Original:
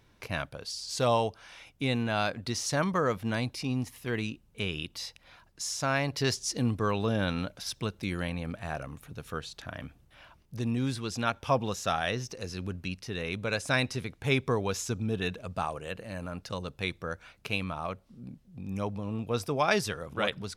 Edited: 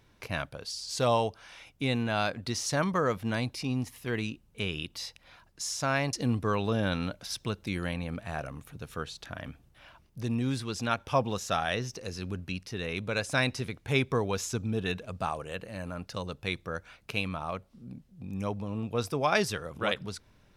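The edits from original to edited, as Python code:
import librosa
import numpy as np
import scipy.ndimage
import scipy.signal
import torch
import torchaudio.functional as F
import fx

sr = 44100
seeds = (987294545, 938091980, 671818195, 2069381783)

y = fx.edit(x, sr, fx.cut(start_s=6.13, length_s=0.36), tone=tone)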